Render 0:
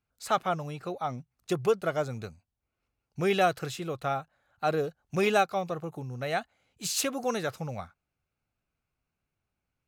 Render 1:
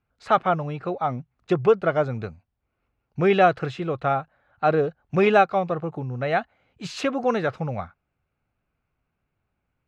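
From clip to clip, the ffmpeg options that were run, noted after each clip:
-af "lowpass=2.4k,volume=7.5dB"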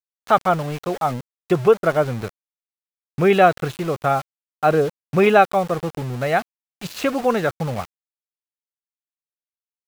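-af "aeval=exprs='val(0)*gte(abs(val(0)),0.0211)':c=same,volume=3.5dB"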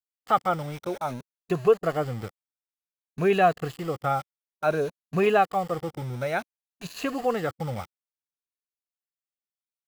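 -af "afftfilt=real='re*pow(10,8/40*sin(2*PI*(1.5*log(max(b,1)*sr/1024/100)/log(2)-(0.56)*(pts-256)/sr)))':imag='im*pow(10,8/40*sin(2*PI*(1.5*log(max(b,1)*sr/1024/100)/log(2)-(0.56)*(pts-256)/sr)))':win_size=1024:overlap=0.75,volume=-8dB"

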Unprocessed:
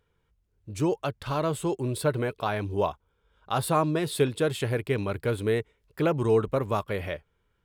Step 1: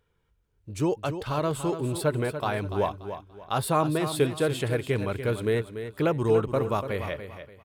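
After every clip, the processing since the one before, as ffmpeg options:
-af "aecho=1:1:289|578|867:0.316|0.0949|0.0285"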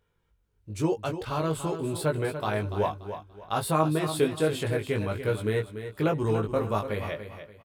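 -filter_complex "[0:a]asplit=2[a][b];[b]adelay=19,volume=-3.5dB[c];[a][c]amix=inputs=2:normalize=0,volume=-2.5dB"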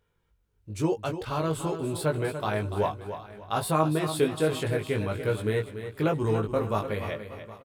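-af "aecho=1:1:767:0.126"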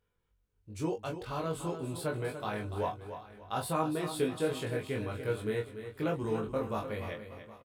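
-filter_complex "[0:a]asplit=2[a][b];[b]adelay=23,volume=-5dB[c];[a][c]amix=inputs=2:normalize=0,volume=-7.5dB"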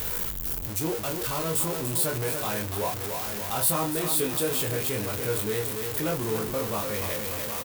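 -filter_complex "[0:a]aeval=exprs='val(0)+0.5*0.0282*sgn(val(0))':c=same,aemphasis=mode=production:type=50fm,asplit=2[a][b];[b]adelay=25,volume=-12.5dB[c];[a][c]amix=inputs=2:normalize=0"

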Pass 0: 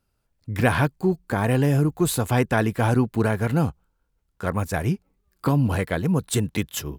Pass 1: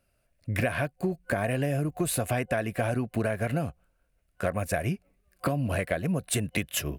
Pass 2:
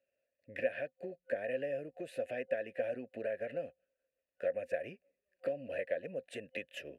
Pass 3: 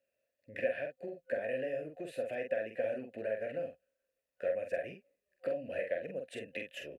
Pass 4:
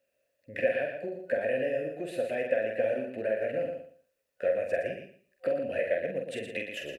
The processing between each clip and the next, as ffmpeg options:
-af "superequalizer=8b=2.82:9b=0.631:11b=1.78:12b=2.24:16b=1.78,acompressor=threshold=-24dB:ratio=10"
-filter_complex "[0:a]asplit=3[a][b][c];[a]bandpass=f=530:t=q:w=8,volume=0dB[d];[b]bandpass=f=1.84k:t=q:w=8,volume=-6dB[e];[c]bandpass=f=2.48k:t=q:w=8,volume=-9dB[f];[d][e][f]amix=inputs=3:normalize=0,equalizer=f=250:t=o:w=0.28:g=6.5"
-filter_complex "[0:a]asplit=2[a][b];[b]adelay=46,volume=-5dB[c];[a][c]amix=inputs=2:normalize=0"
-af "aecho=1:1:117|234|351:0.447|0.0938|0.0197,volume=6dB"

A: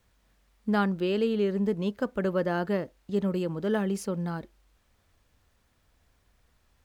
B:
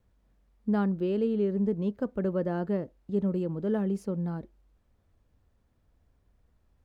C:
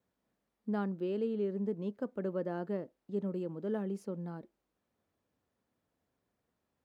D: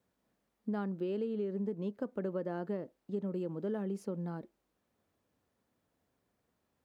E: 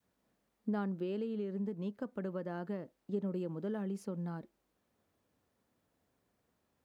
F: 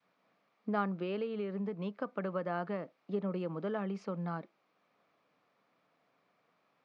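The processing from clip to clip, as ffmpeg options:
-af "tiltshelf=f=940:g=7.5,volume=-6.5dB"
-af "highpass=200,volume=-5.5dB"
-af "acompressor=threshold=-35dB:ratio=6,volume=3dB"
-af "adynamicequalizer=threshold=0.00316:dfrequency=430:dqfactor=0.86:tfrequency=430:tqfactor=0.86:attack=5:release=100:ratio=0.375:range=3:mode=cutabove:tftype=bell,volume=1dB"
-af "highpass=f=160:w=0.5412,highpass=f=160:w=1.3066,equalizer=f=230:t=q:w=4:g=-8,equalizer=f=360:t=q:w=4:g=-5,equalizer=f=690:t=q:w=4:g=4,equalizer=f=1.2k:t=q:w=4:g=9,equalizer=f=2.3k:t=q:w=4:g=8,lowpass=f=5k:w=0.5412,lowpass=f=5k:w=1.3066,volume=4.5dB"

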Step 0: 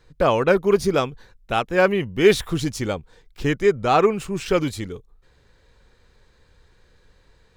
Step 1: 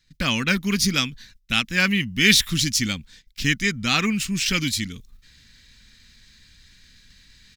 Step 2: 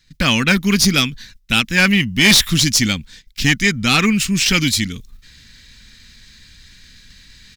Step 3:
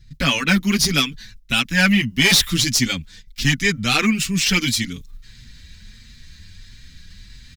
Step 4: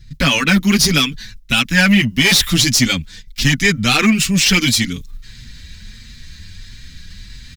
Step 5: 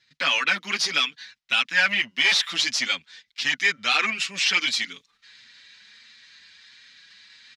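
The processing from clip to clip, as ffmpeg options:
-af "agate=range=-12dB:threshold=-49dB:ratio=16:detection=peak,firequalizer=gain_entry='entry(140,0);entry(230,7);entry(390,-16);entry(680,-16);entry(1900,8);entry(3700,12);entry(5300,15);entry(8700,9);entry(13000,12)':delay=0.05:min_phase=1,areverse,acompressor=mode=upward:threshold=-37dB:ratio=2.5,areverse,volume=-1dB"
-af "aeval=exprs='0.891*(cos(1*acos(clip(val(0)/0.891,-1,1)))-cos(1*PI/2))+0.158*(cos(4*acos(clip(val(0)/0.891,-1,1)))-cos(4*PI/2))+0.398*(cos(5*acos(clip(val(0)/0.891,-1,1)))-cos(5*PI/2))':c=same,volume=-2.5dB"
-filter_complex "[0:a]acrossover=split=180|2400[a][b][c];[a]acompressor=mode=upward:threshold=-28dB:ratio=2.5[d];[d][b][c]amix=inputs=3:normalize=0,asplit=2[e][f];[f]adelay=6,afreqshift=1.5[g];[e][g]amix=inputs=2:normalize=1"
-filter_complex "[0:a]asplit=2[a][b];[b]asoftclip=type=hard:threshold=-19.5dB,volume=-6dB[c];[a][c]amix=inputs=2:normalize=0,alimiter=level_in=5dB:limit=-1dB:release=50:level=0:latency=1,volume=-2dB"
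-af "highpass=760,lowpass=4.3k,volume=-5dB"

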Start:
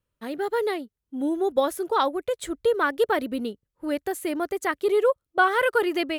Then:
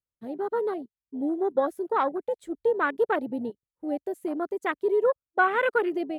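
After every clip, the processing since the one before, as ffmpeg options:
-af "afwtdn=0.0447,volume=-2dB"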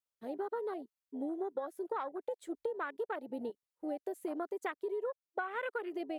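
-af "bass=f=250:g=-14,treble=f=4k:g=1,acompressor=threshold=-33dB:ratio=12,volume=-1dB"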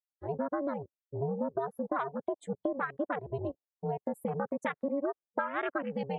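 -af "aeval=exprs='val(0)*sin(2*PI*140*n/s)':c=same,afftdn=nr=24:nf=-61,volume=7.5dB"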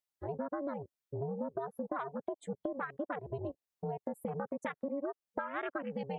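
-af "acompressor=threshold=-43dB:ratio=2,volume=3dB"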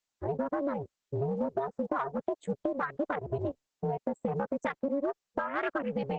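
-filter_complex "[0:a]asplit=2[a][b];[b]volume=32dB,asoftclip=hard,volume=-32dB,volume=-11.5dB[c];[a][c]amix=inputs=2:normalize=0,volume=4.5dB" -ar 48000 -c:a libopus -b:a 12k

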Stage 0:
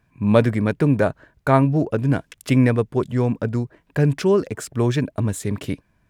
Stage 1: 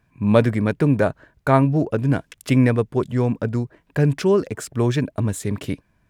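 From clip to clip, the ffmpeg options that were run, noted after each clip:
-af anull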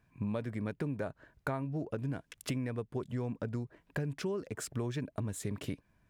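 -af "acompressor=threshold=-26dB:ratio=10,volume=-6.5dB"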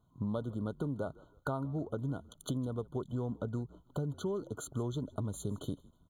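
-filter_complex "[0:a]asplit=4[a][b][c][d];[b]adelay=158,afreqshift=-58,volume=-22dB[e];[c]adelay=316,afreqshift=-116,volume=-30.9dB[f];[d]adelay=474,afreqshift=-174,volume=-39.7dB[g];[a][e][f][g]amix=inputs=4:normalize=0,afftfilt=real='re*eq(mod(floor(b*sr/1024/1500),2),0)':imag='im*eq(mod(floor(b*sr/1024/1500),2),0)':win_size=1024:overlap=0.75"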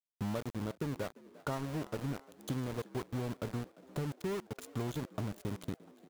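-filter_complex "[0:a]aeval=exprs='val(0)*gte(abs(val(0)),0.0141)':c=same,asplit=6[a][b][c][d][e][f];[b]adelay=348,afreqshift=69,volume=-21dB[g];[c]adelay=696,afreqshift=138,volume=-24.9dB[h];[d]adelay=1044,afreqshift=207,volume=-28.8dB[i];[e]adelay=1392,afreqshift=276,volume=-32.6dB[j];[f]adelay=1740,afreqshift=345,volume=-36.5dB[k];[a][g][h][i][j][k]amix=inputs=6:normalize=0,volume=-1dB"

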